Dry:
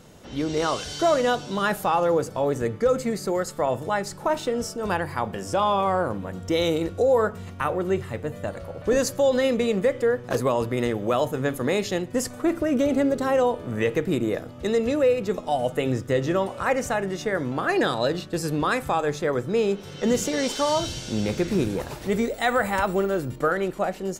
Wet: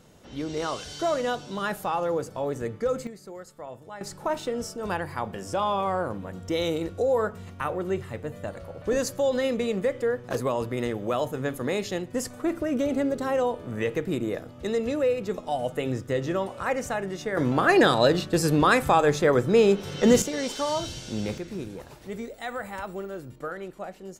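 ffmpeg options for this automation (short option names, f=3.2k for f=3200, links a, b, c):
-af "asetnsamples=n=441:p=0,asendcmd='3.07 volume volume -16dB;4.01 volume volume -4dB;17.37 volume volume 4dB;20.22 volume volume -4.5dB;21.38 volume volume -11.5dB',volume=-5.5dB"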